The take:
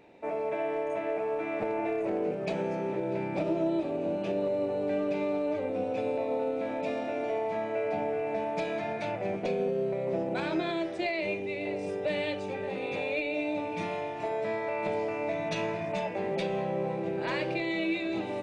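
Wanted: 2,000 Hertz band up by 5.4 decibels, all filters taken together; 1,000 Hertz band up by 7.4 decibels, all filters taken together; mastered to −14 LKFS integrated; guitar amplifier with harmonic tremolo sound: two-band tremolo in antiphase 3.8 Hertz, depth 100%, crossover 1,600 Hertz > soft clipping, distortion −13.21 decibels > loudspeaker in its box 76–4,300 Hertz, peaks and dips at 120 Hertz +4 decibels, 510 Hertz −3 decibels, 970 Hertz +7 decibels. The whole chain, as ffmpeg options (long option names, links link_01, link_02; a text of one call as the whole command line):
ffmpeg -i in.wav -filter_complex "[0:a]equalizer=frequency=1000:width_type=o:gain=4,equalizer=frequency=2000:width_type=o:gain=5.5,acrossover=split=1600[link_01][link_02];[link_01]aeval=exprs='val(0)*(1-1/2+1/2*cos(2*PI*3.8*n/s))':channel_layout=same[link_03];[link_02]aeval=exprs='val(0)*(1-1/2-1/2*cos(2*PI*3.8*n/s))':channel_layout=same[link_04];[link_03][link_04]amix=inputs=2:normalize=0,asoftclip=threshold=-29dB,highpass=76,equalizer=frequency=120:width_type=q:width=4:gain=4,equalizer=frequency=510:width_type=q:width=4:gain=-3,equalizer=frequency=970:width_type=q:width=4:gain=7,lowpass=frequency=4300:width=0.5412,lowpass=frequency=4300:width=1.3066,volume=22.5dB" out.wav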